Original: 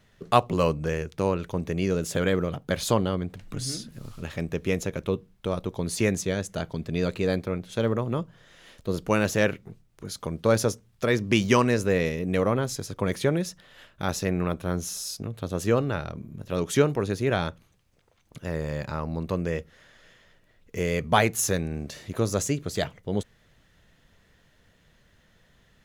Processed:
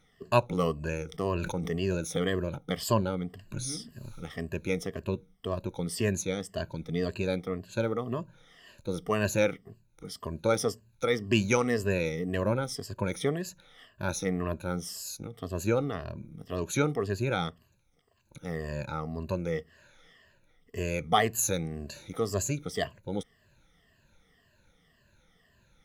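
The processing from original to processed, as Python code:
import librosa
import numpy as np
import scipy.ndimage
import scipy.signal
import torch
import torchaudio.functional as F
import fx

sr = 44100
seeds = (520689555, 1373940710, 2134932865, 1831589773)

y = fx.spec_ripple(x, sr, per_octave=1.4, drift_hz=-1.9, depth_db=17)
y = fx.sustainer(y, sr, db_per_s=39.0, at=(1.06, 2.01))
y = y * 10.0 ** (-7.0 / 20.0)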